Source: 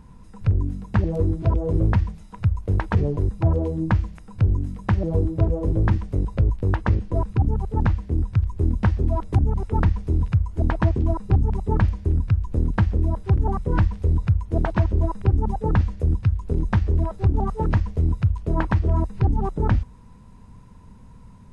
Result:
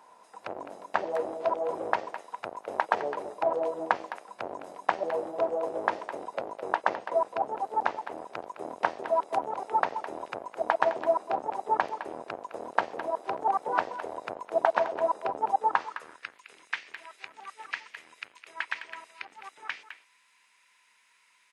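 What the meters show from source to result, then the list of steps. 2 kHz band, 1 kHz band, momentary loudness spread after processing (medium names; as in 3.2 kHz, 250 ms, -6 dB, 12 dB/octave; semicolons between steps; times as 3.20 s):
+2.0 dB, +4.5 dB, 16 LU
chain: octave divider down 1 oct, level 0 dB; high-pass 340 Hz 6 dB/octave; speakerphone echo 210 ms, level -10 dB; high-pass sweep 700 Hz -> 2.2 kHz, 15.52–16.42 s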